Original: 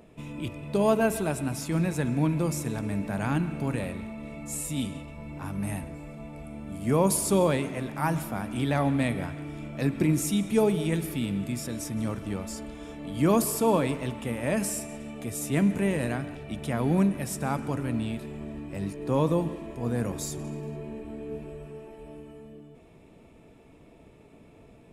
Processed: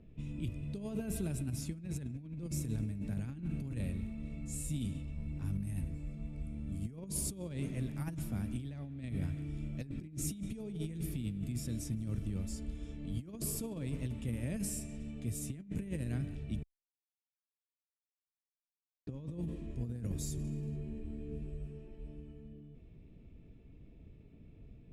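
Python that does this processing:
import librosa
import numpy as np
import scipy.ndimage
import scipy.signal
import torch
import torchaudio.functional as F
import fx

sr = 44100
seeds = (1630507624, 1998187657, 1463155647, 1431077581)

y = fx.edit(x, sr, fx.silence(start_s=16.63, length_s=2.44), tone=tone)
y = fx.tone_stack(y, sr, knobs='10-0-1')
y = fx.over_compress(y, sr, threshold_db=-46.0, ratio=-0.5)
y = fx.env_lowpass(y, sr, base_hz=2900.0, full_db=-43.0)
y = F.gain(torch.from_numpy(y), 9.5).numpy()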